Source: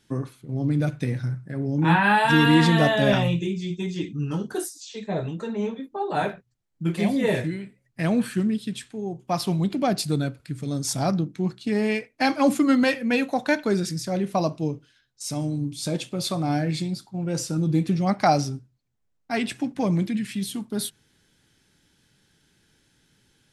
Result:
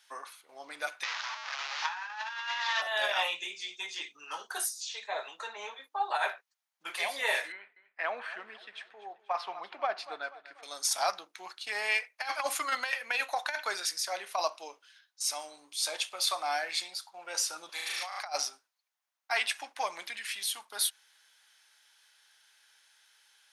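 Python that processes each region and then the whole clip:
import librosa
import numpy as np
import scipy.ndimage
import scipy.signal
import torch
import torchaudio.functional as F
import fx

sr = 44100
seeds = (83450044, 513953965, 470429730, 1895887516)

y = fx.chain(x, sr, fx.delta_mod(bps=32000, step_db=-26.5),
    fx.cheby1_highpass(hz=970.0, order=2), at=(1.03, 2.82))
y = fx.chain(y, sr, fx.lowpass(hz=1900.0, slope=12),
    fx.echo_feedback(ms=242, feedback_pct=45, wet_db=-17), at=(7.52, 10.63))
y = fx.chain(y, sr, fx.highpass(hz=870.0, slope=12),
    fx.room_flutter(wall_m=6.3, rt60_s=1.5),
    fx.over_compress(threshold_db=-36.0, ratio=-1.0), at=(17.69, 18.2))
y = scipy.signal.sosfilt(scipy.signal.butter(4, 810.0, 'highpass', fs=sr, output='sos'), y)
y = fx.notch(y, sr, hz=7600.0, q=8.3)
y = fx.over_compress(y, sr, threshold_db=-29.0, ratio=-0.5)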